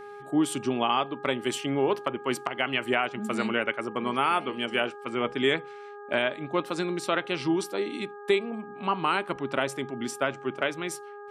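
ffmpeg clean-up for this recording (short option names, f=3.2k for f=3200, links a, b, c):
-af "bandreject=f=410.3:t=h:w=4,bandreject=f=820.6:t=h:w=4,bandreject=f=1.2309k:t=h:w=4,bandreject=f=1.6412k:t=h:w=4"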